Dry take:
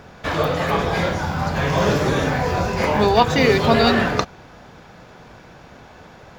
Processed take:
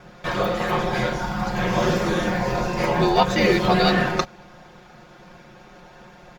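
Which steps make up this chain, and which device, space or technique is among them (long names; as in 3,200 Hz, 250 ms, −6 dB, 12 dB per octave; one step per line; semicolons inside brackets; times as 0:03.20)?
ring-modulated robot voice (ring modulation 42 Hz; comb filter 5.6 ms, depth 88%)
level −2 dB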